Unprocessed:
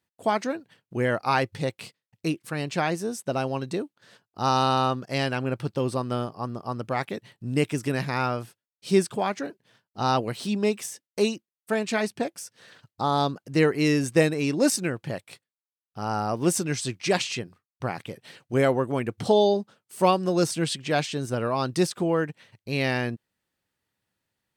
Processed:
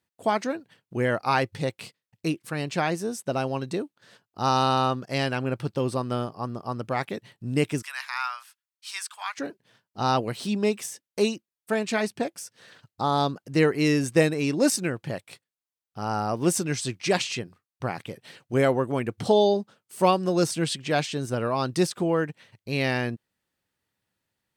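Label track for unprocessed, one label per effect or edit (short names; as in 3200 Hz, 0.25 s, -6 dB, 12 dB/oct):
7.820000	9.380000	steep high-pass 1000 Hz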